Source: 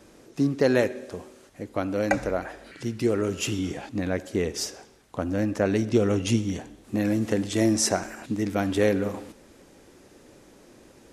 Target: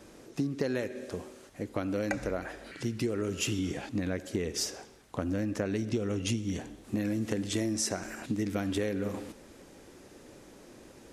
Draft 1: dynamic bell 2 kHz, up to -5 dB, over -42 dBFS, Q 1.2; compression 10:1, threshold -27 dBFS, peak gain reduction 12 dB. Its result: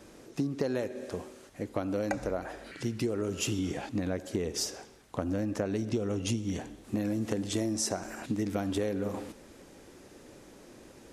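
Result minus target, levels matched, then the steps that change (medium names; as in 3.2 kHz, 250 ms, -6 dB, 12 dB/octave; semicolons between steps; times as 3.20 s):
2 kHz band -3.0 dB
change: dynamic bell 820 Hz, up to -5 dB, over -42 dBFS, Q 1.2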